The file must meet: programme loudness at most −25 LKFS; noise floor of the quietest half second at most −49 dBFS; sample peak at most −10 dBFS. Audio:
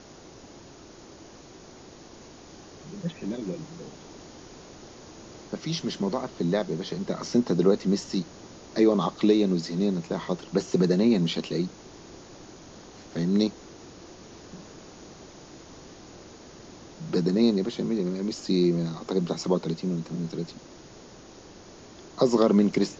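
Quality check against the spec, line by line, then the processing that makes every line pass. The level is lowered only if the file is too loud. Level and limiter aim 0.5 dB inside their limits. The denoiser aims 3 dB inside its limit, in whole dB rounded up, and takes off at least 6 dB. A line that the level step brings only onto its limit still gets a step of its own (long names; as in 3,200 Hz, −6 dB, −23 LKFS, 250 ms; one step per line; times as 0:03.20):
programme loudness −26.5 LKFS: in spec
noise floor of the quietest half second −48 dBFS: out of spec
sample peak −8.5 dBFS: out of spec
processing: broadband denoise 6 dB, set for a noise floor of −48 dBFS
brickwall limiter −10.5 dBFS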